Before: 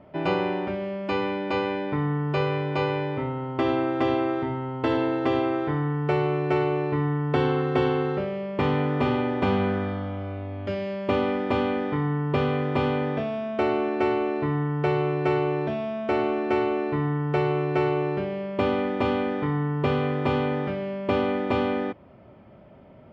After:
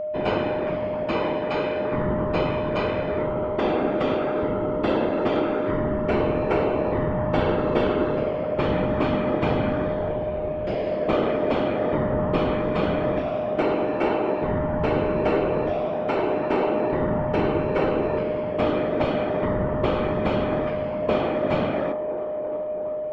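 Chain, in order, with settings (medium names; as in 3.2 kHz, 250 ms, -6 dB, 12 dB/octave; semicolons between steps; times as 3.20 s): feedback echo behind a band-pass 337 ms, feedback 73%, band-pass 660 Hz, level -8 dB; whisper effect; whistle 610 Hz -26 dBFS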